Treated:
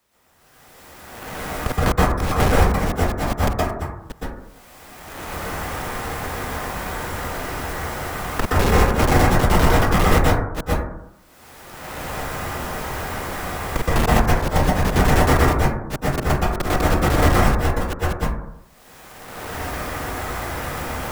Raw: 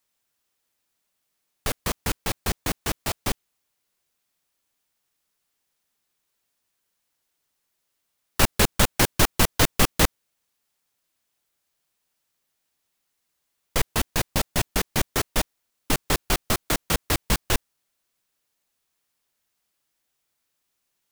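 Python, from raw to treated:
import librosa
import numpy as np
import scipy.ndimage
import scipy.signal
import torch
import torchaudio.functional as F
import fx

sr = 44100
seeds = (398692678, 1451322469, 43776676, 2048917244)

y = fx.reverse_delay(x, sr, ms=412, wet_db=0)
y = fx.recorder_agc(y, sr, target_db=-9.5, rise_db_per_s=21.0, max_gain_db=30)
y = fx.auto_swell(y, sr, attack_ms=359.0)
y = fx.leveller(y, sr, passes=3)
y = fx.high_shelf(y, sr, hz=2200.0, db=-11.5)
y = 10.0 ** (-15.5 / 20.0) * np.tanh(y / 10.0 ** (-15.5 / 20.0))
y = fx.rev_plate(y, sr, seeds[0], rt60_s=0.62, hf_ratio=0.3, predelay_ms=110, drr_db=-8.0)
y = fx.band_squash(y, sr, depth_pct=70)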